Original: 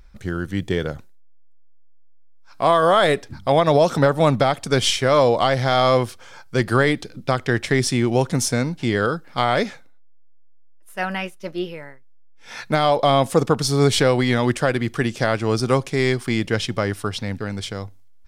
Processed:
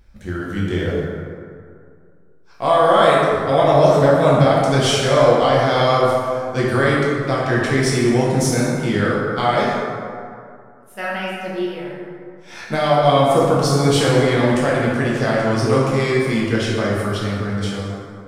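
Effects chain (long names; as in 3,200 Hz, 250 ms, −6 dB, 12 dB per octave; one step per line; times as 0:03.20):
dense smooth reverb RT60 2.3 s, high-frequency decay 0.45×, DRR −6 dB
level −4.5 dB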